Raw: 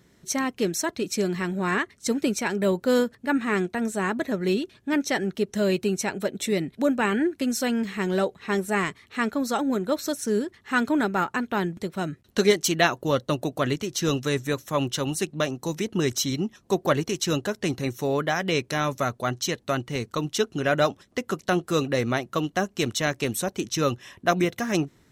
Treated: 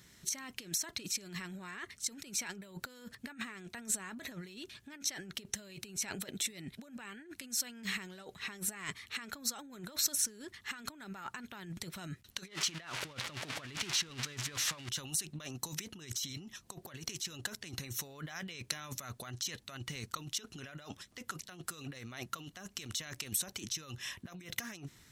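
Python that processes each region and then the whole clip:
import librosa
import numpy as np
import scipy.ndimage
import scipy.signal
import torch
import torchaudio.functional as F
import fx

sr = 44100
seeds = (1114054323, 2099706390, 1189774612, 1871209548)

y = fx.chain(x, sr, fx.crossing_spikes(level_db=-11.5),
    fx.lowpass(hz=2400.0, slope=12), at=(12.48, 14.89))
y = fx.over_compress(y, sr, threshold_db=-34.0, ratio=-1.0)
y = fx.tone_stack(y, sr, knobs='5-5-5')
y = F.gain(torch.from_numpy(y), 4.0).numpy()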